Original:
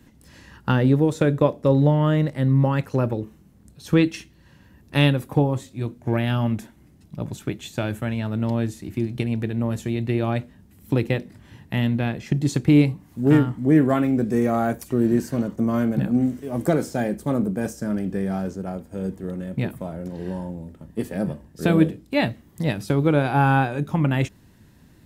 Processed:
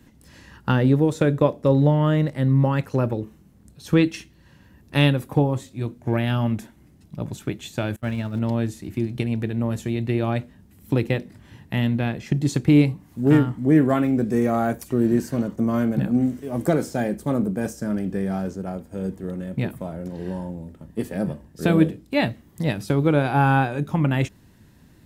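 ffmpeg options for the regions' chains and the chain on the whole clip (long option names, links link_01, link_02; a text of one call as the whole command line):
ffmpeg -i in.wav -filter_complex "[0:a]asettb=1/sr,asplit=3[link_01][link_02][link_03];[link_01]atrim=end=7.964[link_04];[link_02]atrim=start=7.96:end=8.39,asetpts=PTS-STARTPTS,afade=type=in:duration=0.004:curve=qsin,afade=type=out:start_time=0.426:duration=0.004:curve=qsin,aeval=exprs='val(0)+0.5*0.0126*sgn(val(0))':channel_layout=same,agate=range=-27dB:threshold=-26dB:ratio=16:release=100:detection=peak[link_05];[link_03]atrim=start=8.386[link_06];[link_04][link_05]acrossfade=duration=0.004:curve1=hsin:curve2=qsin[link_07];[link_07][link_06]acrossfade=duration=0.004:curve1=qsin:curve2=hsin" out.wav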